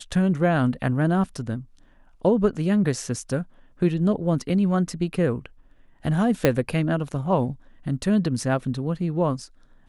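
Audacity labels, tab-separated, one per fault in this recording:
6.450000	6.450000	click −4 dBFS

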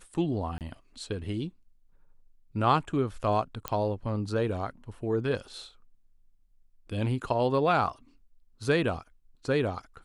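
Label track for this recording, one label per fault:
0.580000	0.610000	drop-out 28 ms
3.680000	3.680000	click −13 dBFS

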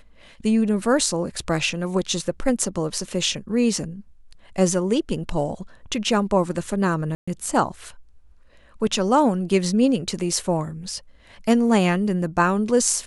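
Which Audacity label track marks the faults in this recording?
7.150000	7.280000	drop-out 125 ms

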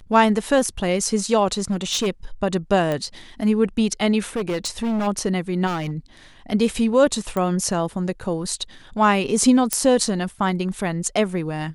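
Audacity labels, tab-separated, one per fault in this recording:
1.700000	2.080000	clipping −17.5 dBFS
2.920000	2.920000	click −12 dBFS
4.360000	5.080000	clipping −20 dBFS
5.660000	5.920000	clipping −21 dBFS
7.370000	7.370000	click −13 dBFS
9.730000	9.730000	click −4 dBFS

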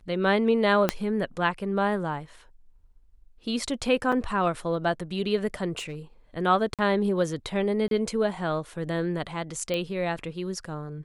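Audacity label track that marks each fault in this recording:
0.890000	0.890000	click −7 dBFS
4.120000	4.120000	drop-out 4.9 ms
5.780000	5.960000	clipping −30 dBFS
6.740000	6.790000	drop-out 47 ms
7.880000	7.910000	drop-out 32 ms
9.740000	9.740000	click −16 dBFS

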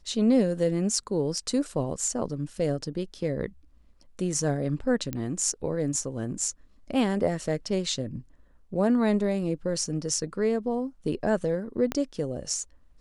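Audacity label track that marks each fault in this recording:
5.130000	5.130000	click −17 dBFS
11.920000	11.920000	click −14 dBFS

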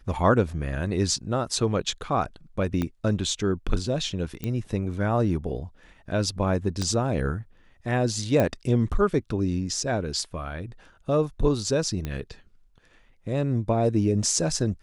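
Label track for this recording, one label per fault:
2.820000	2.820000	click −14 dBFS
4.440000	4.440000	click −17 dBFS
6.820000	6.820000	click −16 dBFS
8.400000	8.400000	click −11 dBFS
12.050000	12.050000	click −17 dBFS

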